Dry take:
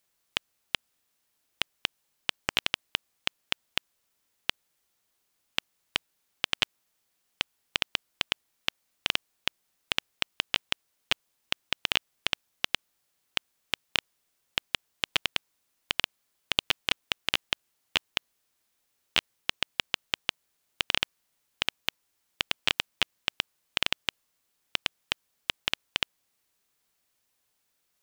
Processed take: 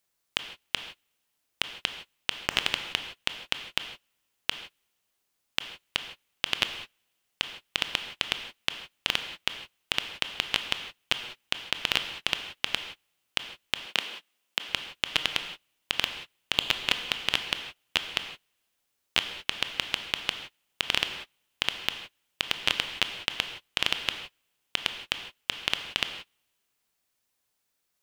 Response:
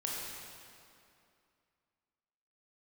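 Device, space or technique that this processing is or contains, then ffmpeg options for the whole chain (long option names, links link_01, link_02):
keyed gated reverb: -filter_complex "[0:a]asplit=3[link_01][link_02][link_03];[1:a]atrim=start_sample=2205[link_04];[link_02][link_04]afir=irnorm=-1:irlink=0[link_05];[link_03]apad=whole_len=1235776[link_06];[link_05][link_06]sidechaingate=range=-33dB:threshold=-55dB:ratio=16:detection=peak,volume=-5dB[link_07];[link_01][link_07]amix=inputs=2:normalize=0,asettb=1/sr,asplit=3[link_08][link_09][link_10];[link_08]atrim=end=13.864[link_11];[link_09]atrim=start=13.86:end=14.68,asetpts=PTS-STARTPTS,afade=type=in:duration=0.004:curve=qsin,afade=type=out:start_time=0.816:duration=0.004:curve=qsin,highpass=frequency=190:width=0.5412,highpass=frequency=190:width=1.3066[link_12];[link_10]atrim=start=14.676[link_13];[link_11][link_12]acrossfade=duration=0.004:curve1=hsin:curve2=qsin[link_14];[link_14][link_13]acrossfade=duration=0.004:curve1=qsin:curve2=hsin,volume=-2.5dB"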